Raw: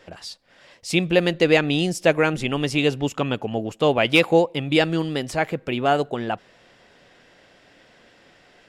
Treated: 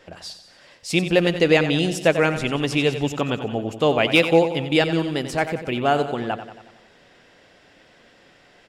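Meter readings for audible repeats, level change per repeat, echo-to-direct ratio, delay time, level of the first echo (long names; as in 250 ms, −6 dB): 5, −5.0 dB, −9.5 dB, 91 ms, −11.0 dB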